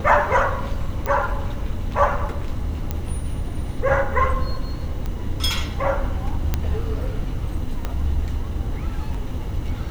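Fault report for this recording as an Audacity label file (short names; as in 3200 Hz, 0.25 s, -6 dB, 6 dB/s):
1.060000	1.060000	pop -11 dBFS
2.910000	2.910000	pop -11 dBFS
5.060000	5.060000	pop -16 dBFS
6.540000	6.540000	pop -7 dBFS
7.850000	7.850000	pop -12 dBFS
9.140000	9.140000	gap 5 ms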